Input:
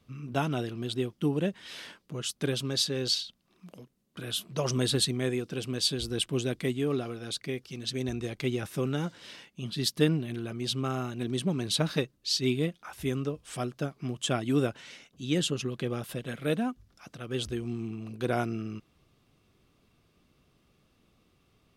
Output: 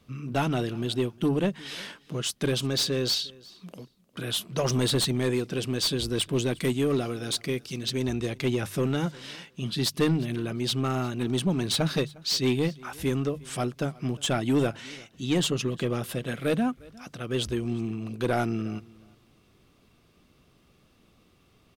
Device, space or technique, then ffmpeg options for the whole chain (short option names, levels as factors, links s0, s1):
saturation between pre-emphasis and de-emphasis: -filter_complex "[0:a]asettb=1/sr,asplit=3[s0][s1][s2];[s0]atrim=end=6.604[s3];[s1]atrim=start=6.6:end=7.79,asetpts=PTS-STARTPTS,afade=t=in:d=0.004:c=qsin,afade=t=out:st=1.186:d=0.004:c=qsin,bass=f=250:g=1,treble=f=4000:g=5[s4];[s2]atrim=start=7.786[s5];[s3][s4]acrossfade=d=0.004:c1=hsin:c2=qsin[s6];[s6][s5]acrossfade=d=0.004:c1=qsin:c2=hsin,highshelf=f=4300:g=7,bandreject=f=50:t=h:w=6,bandreject=f=100:t=h:w=6,bandreject=f=150:t=h:w=6,asoftclip=type=tanh:threshold=0.075,highshelf=f=4300:g=-7,aecho=1:1:355|710:0.0668|0.01,volume=1.88"